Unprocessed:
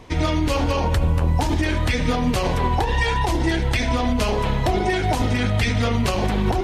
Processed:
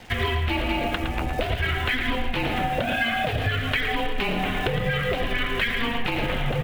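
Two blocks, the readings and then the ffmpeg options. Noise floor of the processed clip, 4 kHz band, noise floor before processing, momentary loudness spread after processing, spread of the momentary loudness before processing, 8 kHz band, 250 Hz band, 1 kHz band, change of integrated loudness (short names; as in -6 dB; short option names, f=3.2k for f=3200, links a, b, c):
-28 dBFS, +0.5 dB, -23 dBFS, 3 LU, 1 LU, -12.0 dB, -7.0 dB, -4.0 dB, -4.0 dB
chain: -af "lowshelf=f=360:g=6.5,highpass=f=200:t=q:w=0.5412,highpass=f=200:t=q:w=1.307,lowpass=f=3.3k:t=q:w=0.5176,lowpass=f=3.3k:t=q:w=0.7071,lowpass=f=3.3k:t=q:w=1.932,afreqshift=-230,aeval=exprs='sgn(val(0))*max(abs(val(0))-0.002,0)':c=same,crystalizer=i=7.5:c=0,aecho=1:1:112:0.398,acompressor=threshold=-21dB:ratio=6"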